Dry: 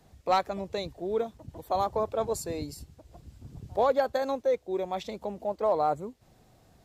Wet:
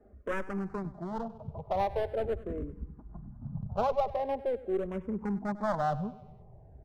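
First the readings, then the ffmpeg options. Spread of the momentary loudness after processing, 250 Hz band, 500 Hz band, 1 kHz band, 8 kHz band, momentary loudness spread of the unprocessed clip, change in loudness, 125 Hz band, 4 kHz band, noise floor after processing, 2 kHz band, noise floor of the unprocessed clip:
13 LU, +2.5 dB, -4.5 dB, -4.5 dB, under -15 dB, 15 LU, -4.0 dB, +4.5 dB, -11.0 dB, -54 dBFS, -1.0 dB, -61 dBFS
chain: -filter_complex "[0:a]lowpass=f=1.2k:w=0.5412,lowpass=f=1.2k:w=1.3066,lowshelf=f=78:g=-5,aecho=1:1:4.9:0.46,asubboost=boost=4:cutoff=190,asplit=2[a][b];[b]acompressor=threshold=-37dB:ratio=6,volume=-2.5dB[c];[a][c]amix=inputs=2:normalize=0,aeval=exprs='clip(val(0),-1,0.0355)':c=same,aecho=1:1:98|196|294|392|490:0.133|0.076|0.0433|0.0247|0.0141,asplit=2[d][e];[e]afreqshift=-0.43[f];[d][f]amix=inputs=2:normalize=1"

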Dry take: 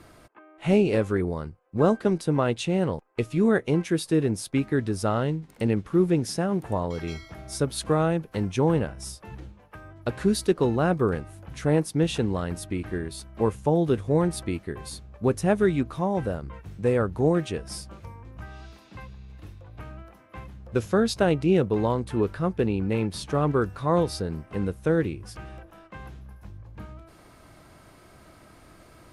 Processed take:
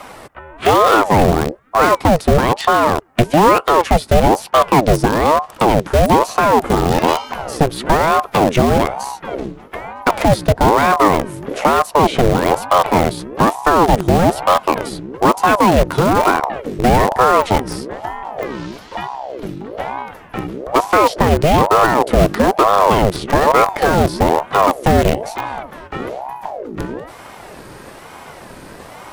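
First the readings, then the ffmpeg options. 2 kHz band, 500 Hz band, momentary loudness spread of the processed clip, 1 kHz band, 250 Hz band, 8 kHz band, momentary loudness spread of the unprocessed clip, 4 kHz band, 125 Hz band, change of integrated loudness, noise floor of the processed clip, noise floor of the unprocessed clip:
+15.5 dB, +10.5 dB, 15 LU, +21.0 dB, +7.0 dB, +10.5 dB, 21 LU, +13.5 dB, +7.5 dB, +11.5 dB, -38 dBFS, -53 dBFS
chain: -filter_complex "[0:a]acrossover=split=370|2900[a][b][c];[a]acompressor=threshold=-27dB:ratio=4[d];[b]acompressor=threshold=-33dB:ratio=4[e];[c]acompressor=threshold=-51dB:ratio=4[f];[d][e][f]amix=inputs=3:normalize=0,asplit=2[g][h];[h]acrusher=bits=4:mix=0:aa=0.000001,volume=-6.5dB[i];[g][i]amix=inputs=2:normalize=0,apsyclip=21dB,aeval=exprs='1.12*(cos(1*acos(clip(val(0)/1.12,-1,1)))-cos(1*PI/2))+0.0447*(cos(8*acos(clip(val(0)/1.12,-1,1)))-cos(8*PI/2))':c=same,aeval=exprs='val(0)*sin(2*PI*570*n/s+570*0.6/1.1*sin(2*PI*1.1*n/s))':c=same,volume=-2.5dB"

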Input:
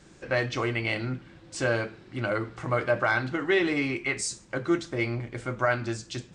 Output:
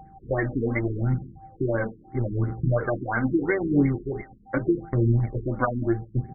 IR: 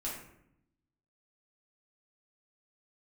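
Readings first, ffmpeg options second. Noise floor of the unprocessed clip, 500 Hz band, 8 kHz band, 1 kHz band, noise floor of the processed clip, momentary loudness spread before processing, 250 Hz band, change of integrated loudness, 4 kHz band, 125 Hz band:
-53 dBFS, +1.0 dB, under -40 dB, -1.0 dB, -52 dBFS, 9 LU, +5.5 dB, +2.0 dB, under -40 dB, +8.5 dB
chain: -filter_complex "[0:a]asplit=2[a][b];[b]adynamicsmooth=sensitivity=5:basefreq=530,volume=-3dB[c];[a][c]amix=inputs=2:normalize=0,bass=f=250:g=7,treble=f=4k:g=-12,acompressor=threshold=-22dB:ratio=3,tremolo=f=100:d=0.4,agate=range=-10dB:threshold=-34dB:ratio=16:detection=peak,aeval=exprs='val(0)+0.00316*sin(2*PI*780*n/s)':c=same,highshelf=f=3.6k:g=9,aecho=1:1:132:0.0794,aphaser=in_gain=1:out_gain=1:delay=4.4:decay=0.54:speed=0.79:type=triangular,afftfilt=real='re*lt(b*sr/1024,410*pow(2300/410,0.5+0.5*sin(2*PI*2.9*pts/sr)))':imag='im*lt(b*sr/1024,410*pow(2300/410,0.5+0.5*sin(2*PI*2.9*pts/sr)))':win_size=1024:overlap=0.75,volume=2dB"

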